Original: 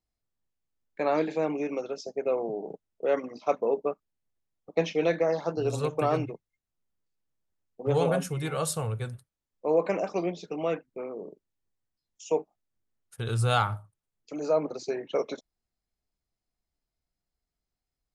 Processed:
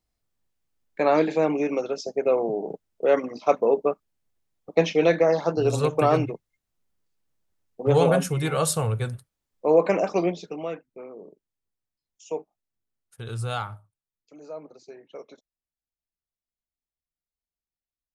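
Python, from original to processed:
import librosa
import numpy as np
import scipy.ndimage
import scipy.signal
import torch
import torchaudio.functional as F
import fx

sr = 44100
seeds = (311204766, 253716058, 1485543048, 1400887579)

y = fx.gain(x, sr, db=fx.line((10.27, 6.0), (10.73, -4.0), (13.4, -4.0), (14.46, -13.0)))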